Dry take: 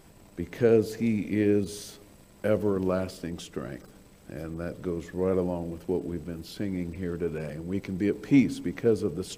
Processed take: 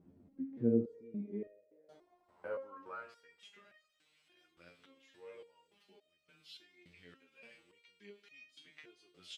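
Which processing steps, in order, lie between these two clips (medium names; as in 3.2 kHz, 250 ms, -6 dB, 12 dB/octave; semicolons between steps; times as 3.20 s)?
bass shelf 120 Hz +7 dB; in parallel at +2 dB: compression, threshold -35 dBFS, peak gain reduction 19.5 dB; on the sum: band-pass sweep 240 Hz -> 3 kHz, 0.67–3.81 s; 1.47–1.89 s: cascade formant filter e; on a send: frequency-shifting echo 98 ms, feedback 62%, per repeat +37 Hz, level -22 dB; on the sum: resonator arpeggio 3.5 Hz 88–620 Hz; trim +1 dB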